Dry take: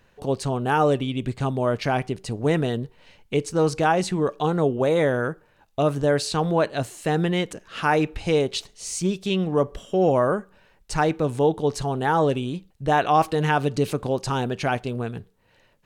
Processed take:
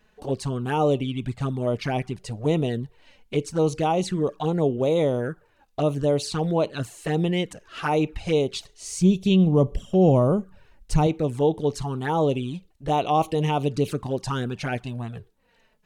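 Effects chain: 8.98–11.07 tone controls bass +10 dB, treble +1 dB; envelope flanger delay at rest 4.8 ms, full sweep at -17.5 dBFS

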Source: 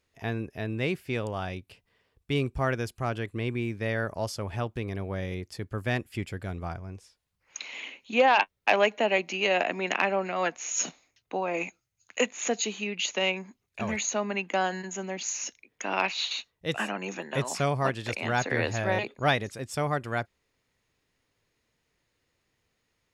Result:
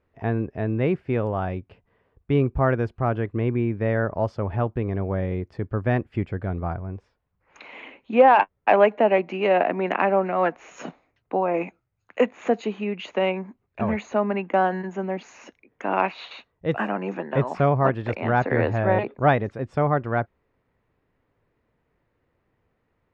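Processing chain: LPF 1300 Hz 12 dB/oct; gain +7.5 dB

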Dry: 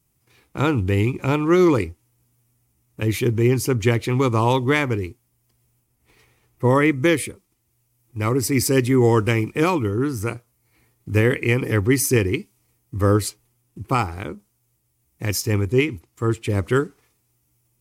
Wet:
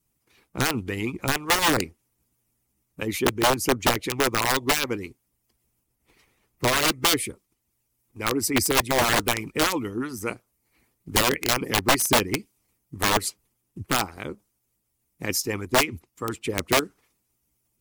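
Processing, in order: wrapped overs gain 11 dB; harmonic-percussive split harmonic -16 dB

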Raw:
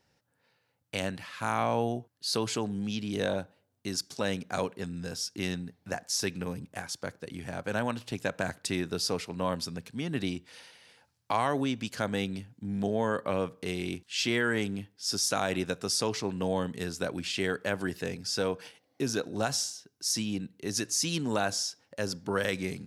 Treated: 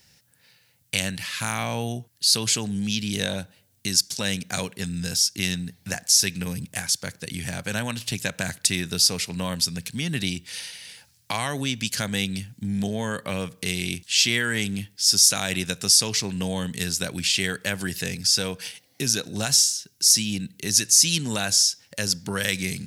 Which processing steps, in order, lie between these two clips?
high shelf 4100 Hz +11.5 dB; in parallel at +3 dB: compressor, threshold -37 dBFS, peak gain reduction 18.5 dB; on the sum: band shelf 600 Hz -8.5 dB 2.7 oct; gain +3.5 dB

